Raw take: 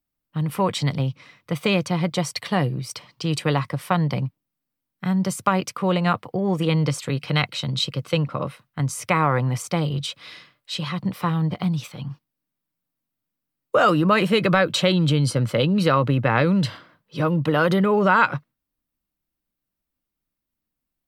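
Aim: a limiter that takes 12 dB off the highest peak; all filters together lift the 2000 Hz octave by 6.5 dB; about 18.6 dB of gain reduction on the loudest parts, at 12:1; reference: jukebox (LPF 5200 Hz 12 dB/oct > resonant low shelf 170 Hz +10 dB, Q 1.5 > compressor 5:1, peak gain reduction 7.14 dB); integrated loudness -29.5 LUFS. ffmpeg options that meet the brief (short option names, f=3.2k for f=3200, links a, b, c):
-af "equalizer=f=2k:t=o:g=9,acompressor=threshold=-28dB:ratio=12,alimiter=limit=-22.5dB:level=0:latency=1,lowpass=5.2k,lowshelf=f=170:t=q:w=1.5:g=10,acompressor=threshold=-26dB:ratio=5,volume=3dB"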